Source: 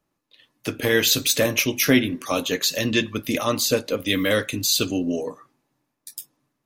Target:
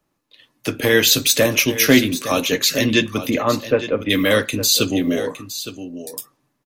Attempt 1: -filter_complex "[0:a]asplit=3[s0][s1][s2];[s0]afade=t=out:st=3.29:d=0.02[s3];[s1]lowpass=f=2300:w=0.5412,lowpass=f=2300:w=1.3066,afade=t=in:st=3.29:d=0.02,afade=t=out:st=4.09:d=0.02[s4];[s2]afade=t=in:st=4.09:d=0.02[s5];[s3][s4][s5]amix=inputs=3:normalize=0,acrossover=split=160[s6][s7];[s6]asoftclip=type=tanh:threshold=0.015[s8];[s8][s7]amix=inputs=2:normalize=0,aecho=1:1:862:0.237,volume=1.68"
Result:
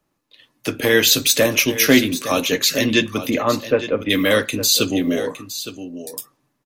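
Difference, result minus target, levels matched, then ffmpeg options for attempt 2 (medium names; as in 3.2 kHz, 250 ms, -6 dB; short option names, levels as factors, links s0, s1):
saturation: distortion +11 dB
-filter_complex "[0:a]asplit=3[s0][s1][s2];[s0]afade=t=out:st=3.29:d=0.02[s3];[s1]lowpass=f=2300:w=0.5412,lowpass=f=2300:w=1.3066,afade=t=in:st=3.29:d=0.02,afade=t=out:st=4.09:d=0.02[s4];[s2]afade=t=in:st=4.09:d=0.02[s5];[s3][s4][s5]amix=inputs=3:normalize=0,acrossover=split=160[s6][s7];[s6]asoftclip=type=tanh:threshold=0.0473[s8];[s8][s7]amix=inputs=2:normalize=0,aecho=1:1:862:0.237,volume=1.68"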